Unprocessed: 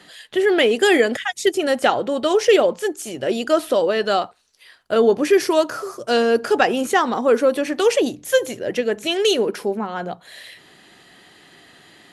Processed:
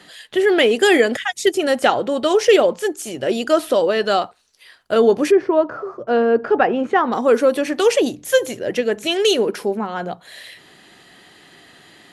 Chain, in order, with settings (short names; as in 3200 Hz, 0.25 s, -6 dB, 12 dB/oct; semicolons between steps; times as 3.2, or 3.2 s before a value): 5.3–7.11 LPF 1100 Hz -> 2000 Hz 12 dB/oct; gain +1.5 dB